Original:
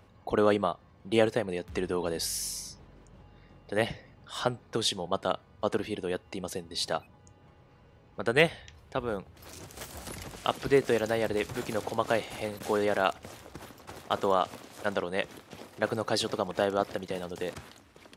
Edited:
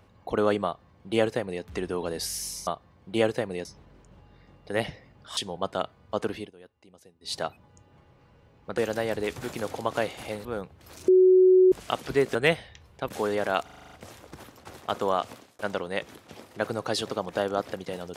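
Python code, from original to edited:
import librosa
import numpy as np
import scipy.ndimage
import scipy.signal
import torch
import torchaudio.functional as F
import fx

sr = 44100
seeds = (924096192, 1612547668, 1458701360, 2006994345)

y = fx.edit(x, sr, fx.duplicate(start_s=0.65, length_s=0.98, to_s=2.67),
    fx.cut(start_s=4.39, length_s=0.48),
    fx.fade_down_up(start_s=5.88, length_s=0.96, db=-18.5, fade_s=0.13),
    fx.swap(start_s=8.28, length_s=0.73, other_s=10.91, other_length_s=1.67),
    fx.bleep(start_s=9.64, length_s=0.64, hz=371.0, db=-13.5),
    fx.stutter(start_s=13.14, slice_s=0.04, count=8),
    fx.fade_out_span(start_s=14.56, length_s=0.25), tone=tone)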